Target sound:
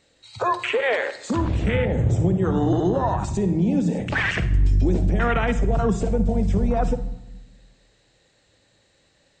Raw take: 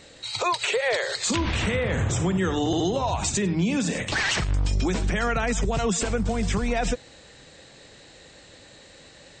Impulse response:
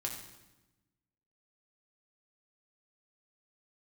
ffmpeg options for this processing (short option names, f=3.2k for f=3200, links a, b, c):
-filter_complex "[0:a]afwtdn=0.0501,asplit=2[a][b];[1:a]atrim=start_sample=2205,lowshelf=f=180:g=11,adelay=55[c];[b][c]afir=irnorm=-1:irlink=0,volume=-13dB[d];[a][d]amix=inputs=2:normalize=0,volume=3dB"